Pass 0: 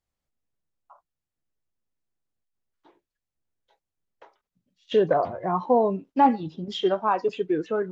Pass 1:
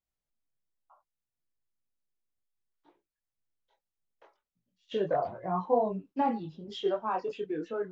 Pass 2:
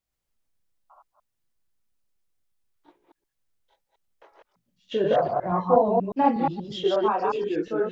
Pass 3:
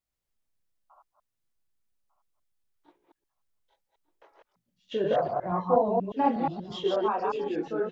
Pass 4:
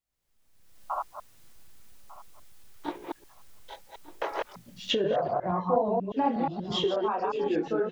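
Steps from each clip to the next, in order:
chorus voices 4, 0.65 Hz, delay 22 ms, depth 5 ms; gain -5 dB
reverse delay 0.12 s, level -1 dB; gain +5.5 dB
feedback echo 1.198 s, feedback 25%, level -18 dB; gain -4 dB
recorder AGC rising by 36 dB/s; gain -2.5 dB

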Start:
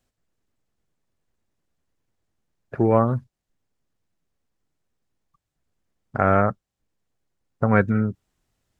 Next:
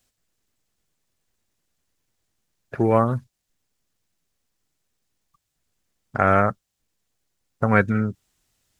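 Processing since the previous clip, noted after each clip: high shelf 2100 Hz +11.5 dB; gain -1 dB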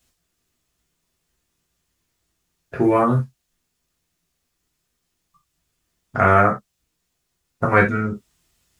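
reverb, pre-delay 3 ms, DRR -2.5 dB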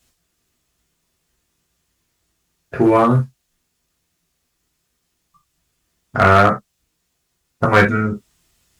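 one-sided clip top -12.5 dBFS, bottom -5.5 dBFS; gain +4 dB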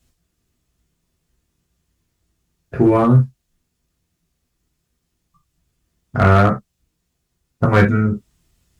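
low shelf 340 Hz +11.5 dB; gain -5.5 dB

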